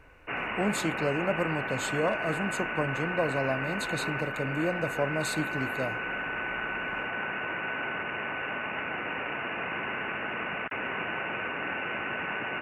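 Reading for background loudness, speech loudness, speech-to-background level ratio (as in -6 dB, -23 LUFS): -32.5 LUFS, -32.0 LUFS, 0.5 dB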